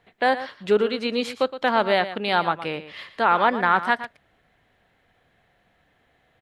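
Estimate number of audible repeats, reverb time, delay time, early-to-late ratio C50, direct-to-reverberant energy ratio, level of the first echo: 1, none, 0.117 s, none, none, -13.0 dB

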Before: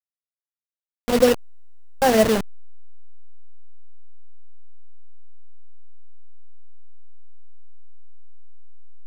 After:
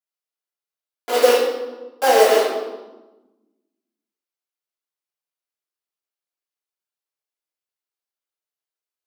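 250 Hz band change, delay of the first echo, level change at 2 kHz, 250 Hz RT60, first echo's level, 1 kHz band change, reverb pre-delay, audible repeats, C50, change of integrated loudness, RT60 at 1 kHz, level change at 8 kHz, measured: -10.5 dB, none, +4.0 dB, 1.8 s, none, +5.0 dB, 3 ms, none, 1.5 dB, +2.0 dB, 1.1 s, +2.5 dB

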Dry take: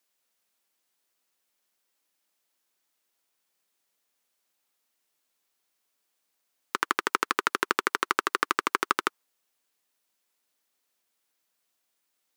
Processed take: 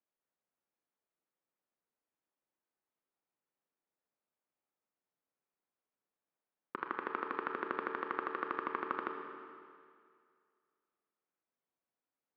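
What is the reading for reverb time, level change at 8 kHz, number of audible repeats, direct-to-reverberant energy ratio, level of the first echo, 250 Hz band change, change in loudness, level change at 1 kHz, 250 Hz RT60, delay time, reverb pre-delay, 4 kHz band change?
2.2 s, under -35 dB, none, 3.0 dB, none, -6.5 dB, -11.5 dB, -10.0 dB, 2.1 s, none, 24 ms, -24.5 dB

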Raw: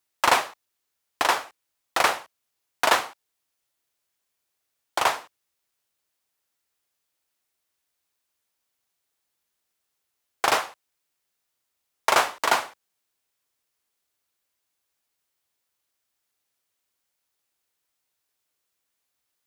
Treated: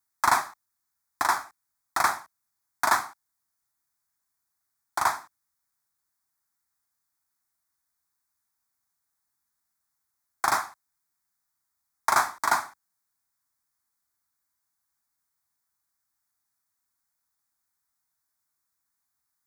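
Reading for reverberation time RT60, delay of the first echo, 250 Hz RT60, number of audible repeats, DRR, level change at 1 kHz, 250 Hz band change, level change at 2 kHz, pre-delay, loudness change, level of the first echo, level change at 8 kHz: none, none, none, none, none, -1.0 dB, -5.0 dB, -3.0 dB, none, -2.5 dB, none, -1.5 dB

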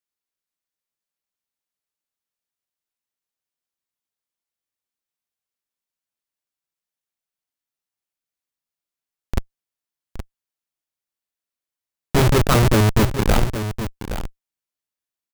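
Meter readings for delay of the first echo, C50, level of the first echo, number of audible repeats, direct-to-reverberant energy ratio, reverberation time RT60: 0.82 s, none, -10.0 dB, 1, none, none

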